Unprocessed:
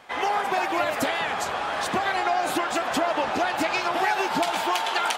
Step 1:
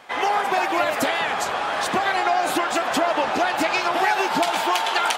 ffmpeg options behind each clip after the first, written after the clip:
ffmpeg -i in.wav -af "lowshelf=frequency=110:gain=-8,volume=3.5dB" out.wav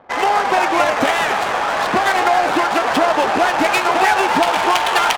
ffmpeg -i in.wav -filter_complex "[0:a]adynamicsmooth=sensitivity=3:basefreq=630,asplit=8[link_01][link_02][link_03][link_04][link_05][link_06][link_07][link_08];[link_02]adelay=272,afreqshift=120,volume=-10dB[link_09];[link_03]adelay=544,afreqshift=240,volume=-14.7dB[link_10];[link_04]adelay=816,afreqshift=360,volume=-19.5dB[link_11];[link_05]adelay=1088,afreqshift=480,volume=-24.2dB[link_12];[link_06]adelay=1360,afreqshift=600,volume=-28.9dB[link_13];[link_07]adelay=1632,afreqshift=720,volume=-33.7dB[link_14];[link_08]adelay=1904,afreqshift=840,volume=-38.4dB[link_15];[link_01][link_09][link_10][link_11][link_12][link_13][link_14][link_15]amix=inputs=8:normalize=0,volume=5.5dB" out.wav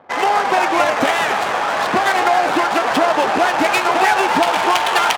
ffmpeg -i in.wav -af "highpass=85" out.wav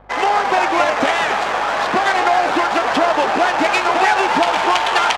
ffmpeg -i in.wav -filter_complex "[0:a]acrossover=split=8300[link_01][link_02];[link_02]acompressor=threshold=-52dB:ratio=4:attack=1:release=60[link_03];[link_01][link_03]amix=inputs=2:normalize=0,lowshelf=frequency=99:gain=-9,aeval=exprs='val(0)+0.00398*(sin(2*PI*50*n/s)+sin(2*PI*2*50*n/s)/2+sin(2*PI*3*50*n/s)/3+sin(2*PI*4*50*n/s)/4+sin(2*PI*5*50*n/s)/5)':channel_layout=same" out.wav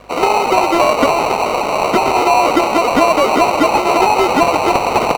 ffmpeg -i in.wav -filter_complex "[0:a]asuperstop=centerf=1400:order=4:qfactor=0.53,acrusher=samples=26:mix=1:aa=0.000001,asplit=2[link_01][link_02];[link_02]highpass=frequency=720:poles=1,volume=15dB,asoftclip=type=tanh:threshold=-3.5dB[link_03];[link_01][link_03]amix=inputs=2:normalize=0,lowpass=frequency=2100:poles=1,volume=-6dB,volume=5.5dB" out.wav

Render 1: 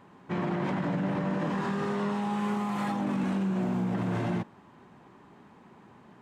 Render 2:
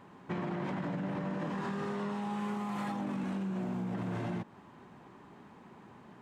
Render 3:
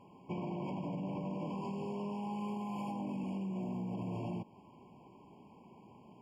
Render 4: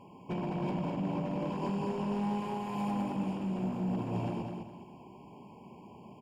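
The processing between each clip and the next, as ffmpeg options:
ffmpeg -i in.wav -af "acompressor=threshold=-33dB:ratio=6" out.wav
ffmpeg -i in.wav -af "afftfilt=real='re*eq(mod(floor(b*sr/1024/1100),2),0)':imag='im*eq(mod(floor(b*sr/1024/1100),2),0)':win_size=1024:overlap=0.75,volume=-3dB" out.wav
ffmpeg -i in.wav -filter_complex "[0:a]volume=35dB,asoftclip=hard,volume=-35dB,asplit=2[link_01][link_02];[link_02]aecho=0:1:206|412|618|824:0.562|0.169|0.0506|0.0152[link_03];[link_01][link_03]amix=inputs=2:normalize=0,volume=5dB" out.wav

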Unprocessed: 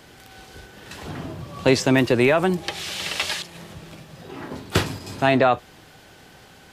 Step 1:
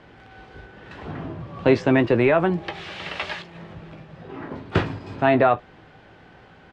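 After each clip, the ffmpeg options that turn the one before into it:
ffmpeg -i in.wav -filter_complex "[0:a]lowpass=2200,asplit=2[link_01][link_02];[link_02]adelay=18,volume=-11dB[link_03];[link_01][link_03]amix=inputs=2:normalize=0" out.wav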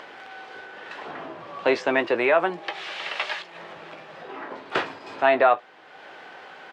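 ffmpeg -i in.wav -filter_complex "[0:a]highpass=540,asplit=2[link_01][link_02];[link_02]acompressor=mode=upward:threshold=-30dB:ratio=2.5,volume=1dB[link_03];[link_01][link_03]amix=inputs=2:normalize=0,volume=-5dB" out.wav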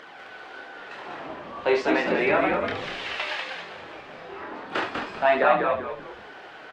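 ffmpeg -i in.wav -filter_complex "[0:a]asplit=2[link_01][link_02];[link_02]aecho=0:1:28|71:0.668|0.447[link_03];[link_01][link_03]amix=inputs=2:normalize=0,flanger=delay=0.5:depth=6.5:regen=-39:speed=0.37:shape=triangular,asplit=2[link_04][link_05];[link_05]asplit=4[link_06][link_07][link_08][link_09];[link_06]adelay=195,afreqshift=-82,volume=-4dB[link_10];[link_07]adelay=390,afreqshift=-164,volume=-13.4dB[link_11];[link_08]adelay=585,afreqshift=-246,volume=-22.7dB[link_12];[link_09]adelay=780,afreqshift=-328,volume=-32.1dB[link_13];[link_10][link_11][link_12][link_13]amix=inputs=4:normalize=0[link_14];[link_04][link_14]amix=inputs=2:normalize=0" out.wav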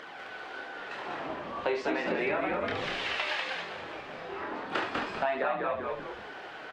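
ffmpeg -i in.wav -af "acompressor=threshold=-27dB:ratio=6" out.wav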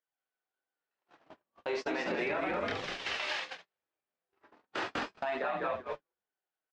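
ffmpeg -i in.wav -af "agate=range=-53dB:threshold=-32dB:ratio=16:detection=peak,equalizer=frequency=5900:width=1.3:gain=7.5,alimiter=level_in=0.5dB:limit=-24dB:level=0:latency=1:release=64,volume=-0.5dB" out.wav

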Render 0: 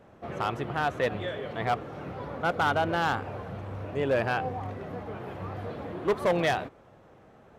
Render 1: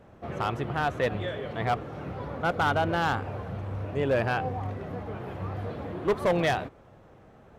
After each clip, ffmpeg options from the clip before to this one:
ffmpeg -i in.wav -af "lowshelf=frequency=120:gain=7.5" out.wav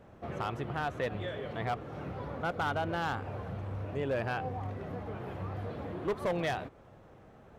ffmpeg -i in.wav -af "acompressor=threshold=-36dB:ratio=1.5,volume=-2dB" out.wav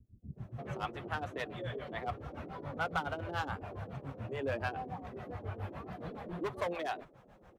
ffmpeg -i in.wav -filter_complex "[0:a]acrossover=split=540[link_01][link_02];[link_01]aeval=exprs='val(0)*(1-1/2+1/2*cos(2*PI*7.1*n/s))':channel_layout=same[link_03];[link_02]aeval=exprs='val(0)*(1-1/2-1/2*cos(2*PI*7.1*n/s))':channel_layout=same[link_04];[link_03][link_04]amix=inputs=2:normalize=0,flanger=delay=2.8:depth=2.9:regen=-47:speed=0.91:shape=sinusoidal,acrossover=split=220[link_05][link_06];[link_06]adelay=360[link_07];[link_05][link_07]amix=inputs=2:normalize=0,volume=6dB" out.wav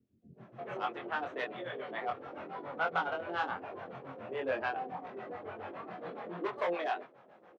ffmpeg -i in.wav -filter_complex "[0:a]highpass=320,lowpass=3300,asplit=2[link_01][link_02];[link_02]adelay=23,volume=-3dB[link_03];[link_01][link_03]amix=inputs=2:normalize=0,volume=1.5dB" out.wav

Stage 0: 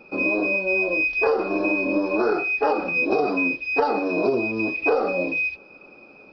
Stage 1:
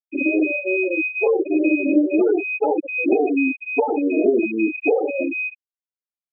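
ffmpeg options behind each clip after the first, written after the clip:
ffmpeg -i in.wav -af "afftfilt=real='re*gte(hypot(re,im),0.251)':imag='im*gte(hypot(re,im),0.251)':win_size=1024:overlap=0.75,equalizer=frequency=310:width=1.3:gain=9.5,volume=-1.5dB" out.wav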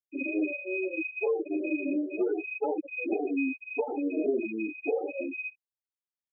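ffmpeg -i in.wav -af "flanger=delay=6.6:depth=4.7:regen=-7:speed=0.72:shape=sinusoidal,volume=-8.5dB" out.wav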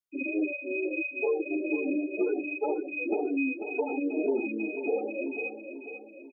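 ffmpeg -i in.wav -af "aecho=1:1:491|982|1473|1964|2455|2946:0.355|0.174|0.0852|0.0417|0.0205|0.01" out.wav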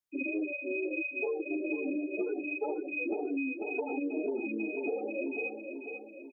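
ffmpeg -i in.wav -af "acompressor=threshold=-30dB:ratio=6" out.wav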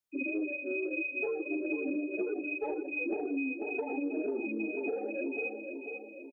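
ffmpeg -i in.wav -filter_complex "[0:a]acrossover=split=490|820[link_01][link_02][link_03];[link_02]asoftclip=type=tanh:threshold=-39.5dB[link_04];[link_01][link_04][link_03]amix=inputs=3:normalize=0,aecho=1:1:163|326|489|652|815:0.1|0.058|0.0336|0.0195|0.0113" out.wav

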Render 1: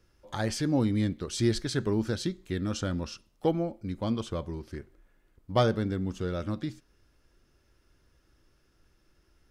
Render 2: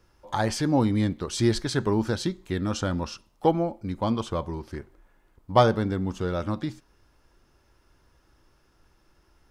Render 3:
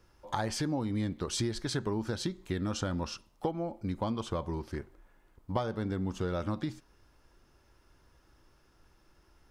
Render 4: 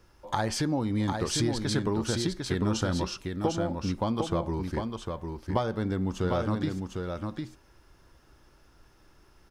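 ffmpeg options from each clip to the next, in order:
ffmpeg -i in.wav -af "equalizer=frequency=910:width_type=o:width=0.8:gain=8.5,volume=3dB" out.wav
ffmpeg -i in.wav -af "acompressor=threshold=-27dB:ratio=10,volume=-1.5dB" out.wav
ffmpeg -i in.wav -af "aecho=1:1:752:0.562,volume=4dB" out.wav

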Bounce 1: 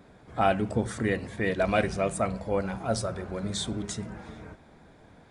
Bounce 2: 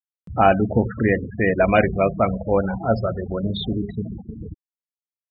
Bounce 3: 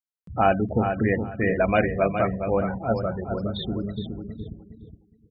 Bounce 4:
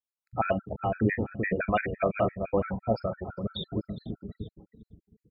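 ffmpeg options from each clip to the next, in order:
ffmpeg -i in.wav -af "lowpass=3500,afftfilt=real='re*gte(hypot(re,im),0.0316)':imag='im*gte(hypot(re,im),0.0316)':win_size=1024:overlap=0.75,acompressor=mode=upward:threshold=-34dB:ratio=2.5,volume=8.5dB" out.wav
ffmpeg -i in.wav -filter_complex "[0:a]asplit=2[link_01][link_02];[link_02]adelay=415,lowpass=frequency=4200:poles=1,volume=-7dB,asplit=2[link_03][link_04];[link_04]adelay=415,lowpass=frequency=4200:poles=1,volume=0.22,asplit=2[link_05][link_06];[link_06]adelay=415,lowpass=frequency=4200:poles=1,volume=0.22[link_07];[link_01][link_03][link_05][link_07]amix=inputs=4:normalize=0,volume=-4.5dB" out.wav
ffmpeg -i in.wav -filter_complex "[0:a]asplit=2[link_01][link_02];[link_02]adelay=43,volume=-12dB[link_03];[link_01][link_03]amix=inputs=2:normalize=0,acrossover=split=640[link_04][link_05];[link_04]aeval=exprs='val(0)*(1-0.5/2+0.5/2*cos(2*PI*6.6*n/s))':channel_layout=same[link_06];[link_05]aeval=exprs='val(0)*(1-0.5/2-0.5/2*cos(2*PI*6.6*n/s))':channel_layout=same[link_07];[link_06][link_07]amix=inputs=2:normalize=0,afftfilt=real='re*gt(sin(2*PI*5.9*pts/sr)*(1-2*mod(floor(b*sr/1024/1300),2)),0)':imag='im*gt(sin(2*PI*5.9*pts/sr)*(1-2*mod(floor(b*sr/1024/1300),2)),0)':win_size=1024:overlap=0.75" out.wav

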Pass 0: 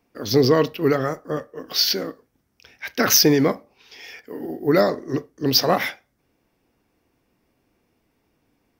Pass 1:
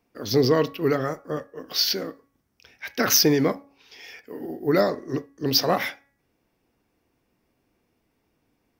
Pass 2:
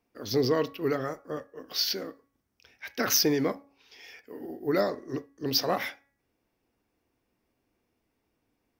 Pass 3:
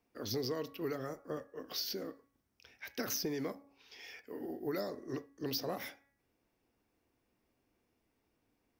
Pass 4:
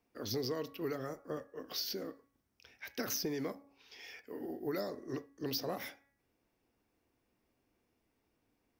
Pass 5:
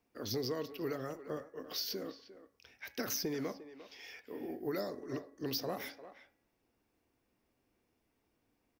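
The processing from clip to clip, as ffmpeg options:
ffmpeg -i in.wav -af "bandreject=frequency=278.8:width_type=h:width=4,bandreject=frequency=557.6:width_type=h:width=4,bandreject=frequency=836.4:width_type=h:width=4,bandreject=frequency=1115.2:width_type=h:width=4,bandreject=frequency=1394:width_type=h:width=4,bandreject=frequency=1672.8:width_type=h:width=4,bandreject=frequency=1951.6:width_type=h:width=4,bandreject=frequency=2230.4:width_type=h:width=4,bandreject=frequency=2509.2:width_type=h:width=4,volume=-3dB" out.wav
ffmpeg -i in.wav -af "equalizer=frequency=160:width_type=o:width=0.44:gain=-4.5,volume=-5.5dB" out.wav
ffmpeg -i in.wav -filter_complex "[0:a]acrossover=split=570|5700[link_01][link_02][link_03];[link_01]acompressor=threshold=-36dB:ratio=4[link_04];[link_02]acompressor=threshold=-43dB:ratio=4[link_05];[link_03]acompressor=threshold=-38dB:ratio=4[link_06];[link_04][link_05][link_06]amix=inputs=3:normalize=0,volume=-2dB" out.wav
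ffmpeg -i in.wav -af anull out.wav
ffmpeg -i in.wav -filter_complex "[0:a]asplit=2[link_01][link_02];[link_02]adelay=350,highpass=300,lowpass=3400,asoftclip=type=hard:threshold=-31.5dB,volume=-13dB[link_03];[link_01][link_03]amix=inputs=2:normalize=0" out.wav

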